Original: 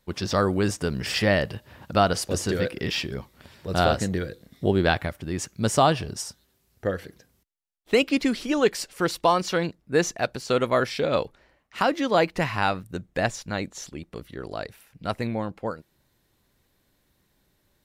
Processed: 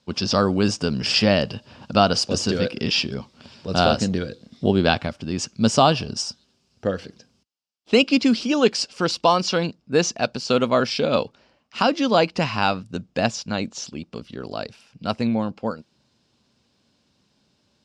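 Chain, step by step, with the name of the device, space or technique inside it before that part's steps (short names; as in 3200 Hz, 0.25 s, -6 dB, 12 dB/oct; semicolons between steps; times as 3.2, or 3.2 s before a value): car door speaker (speaker cabinet 95–7400 Hz, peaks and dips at 230 Hz +7 dB, 350 Hz -3 dB, 1900 Hz -9 dB, 2800 Hz +5 dB, 5000 Hz +9 dB); gain +3 dB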